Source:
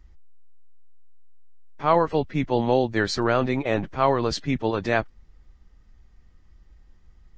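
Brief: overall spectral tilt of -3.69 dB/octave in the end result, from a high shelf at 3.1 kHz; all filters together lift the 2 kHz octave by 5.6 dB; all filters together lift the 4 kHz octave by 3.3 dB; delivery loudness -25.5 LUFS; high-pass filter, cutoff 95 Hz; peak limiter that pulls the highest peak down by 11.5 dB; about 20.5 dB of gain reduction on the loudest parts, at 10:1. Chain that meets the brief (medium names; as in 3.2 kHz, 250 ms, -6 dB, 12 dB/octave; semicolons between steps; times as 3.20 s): high-pass 95 Hz; peaking EQ 2 kHz +7.5 dB; treble shelf 3.1 kHz -5.5 dB; peaking EQ 4 kHz +6 dB; compression 10:1, threshold -35 dBFS; trim +18.5 dB; peak limiter -14 dBFS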